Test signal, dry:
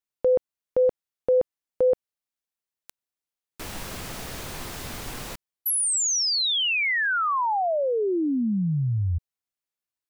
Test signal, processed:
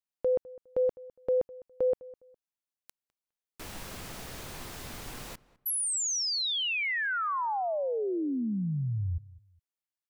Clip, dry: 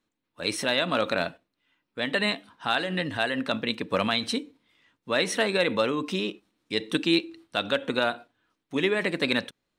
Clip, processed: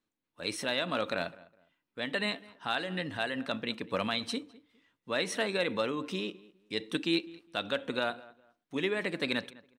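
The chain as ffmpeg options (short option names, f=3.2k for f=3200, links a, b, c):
-filter_complex "[0:a]asplit=2[a][b];[b]adelay=205,lowpass=f=2k:p=1,volume=-20dB,asplit=2[c][d];[d]adelay=205,lowpass=f=2k:p=1,volume=0.26[e];[a][c][e]amix=inputs=3:normalize=0,volume=-6.5dB"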